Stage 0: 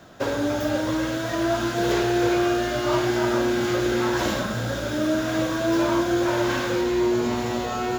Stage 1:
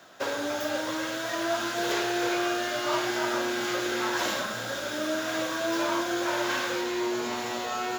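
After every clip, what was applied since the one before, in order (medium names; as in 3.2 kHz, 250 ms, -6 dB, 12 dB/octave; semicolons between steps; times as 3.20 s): high-pass 860 Hz 6 dB/octave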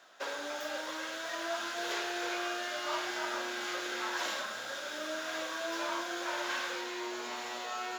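frequency weighting A; trim -6.5 dB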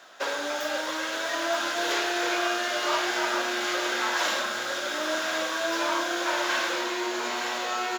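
delay 921 ms -9 dB; trim +8.5 dB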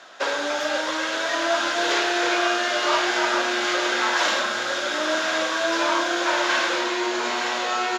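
low-pass 7.2 kHz 12 dB/octave; trim +5 dB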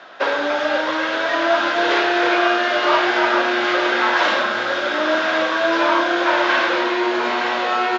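distance through air 230 m; trim +6.5 dB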